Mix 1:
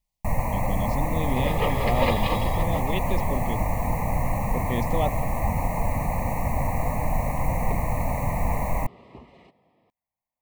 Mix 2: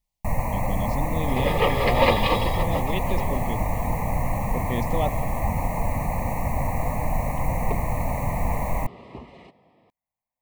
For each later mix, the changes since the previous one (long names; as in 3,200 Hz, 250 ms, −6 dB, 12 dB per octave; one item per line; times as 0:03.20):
second sound +5.5 dB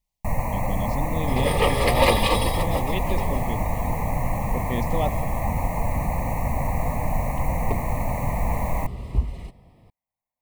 second sound: remove band-pass filter 270–3,700 Hz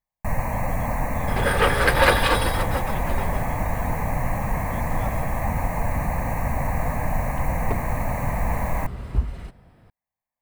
speech −12.0 dB
master: remove Butterworth band-reject 1,500 Hz, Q 2